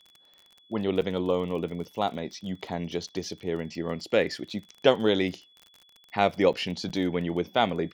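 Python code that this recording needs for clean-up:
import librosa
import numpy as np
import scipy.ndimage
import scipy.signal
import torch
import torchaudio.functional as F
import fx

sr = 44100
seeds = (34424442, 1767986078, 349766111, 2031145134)

y = fx.fix_declick_ar(x, sr, threshold=6.5)
y = fx.notch(y, sr, hz=3400.0, q=30.0)
y = fx.fix_interpolate(y, sr, at_s=(1.01, 6.53, 6.89), length_ms=7.9)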